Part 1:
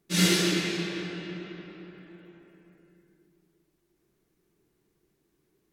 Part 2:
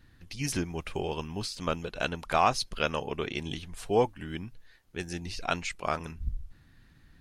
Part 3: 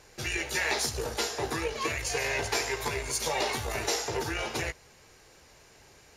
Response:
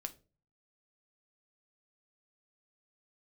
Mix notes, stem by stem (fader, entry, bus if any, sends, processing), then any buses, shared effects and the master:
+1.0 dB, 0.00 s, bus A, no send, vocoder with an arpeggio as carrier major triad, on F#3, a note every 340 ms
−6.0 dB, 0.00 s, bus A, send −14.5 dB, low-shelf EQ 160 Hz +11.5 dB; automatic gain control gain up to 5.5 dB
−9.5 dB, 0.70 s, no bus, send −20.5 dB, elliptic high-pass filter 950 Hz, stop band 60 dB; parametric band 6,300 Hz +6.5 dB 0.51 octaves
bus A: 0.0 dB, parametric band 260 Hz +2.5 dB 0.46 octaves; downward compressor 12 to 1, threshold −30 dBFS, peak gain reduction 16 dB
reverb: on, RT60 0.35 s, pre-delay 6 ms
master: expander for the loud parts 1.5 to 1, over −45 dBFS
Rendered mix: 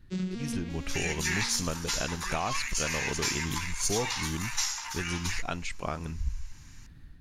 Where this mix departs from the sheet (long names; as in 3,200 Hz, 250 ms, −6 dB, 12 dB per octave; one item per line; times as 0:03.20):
stem 3 −9.5 dB → −2.0 dB
master: missing expander for the loud parts 1.5 to 1, over −45 dBFS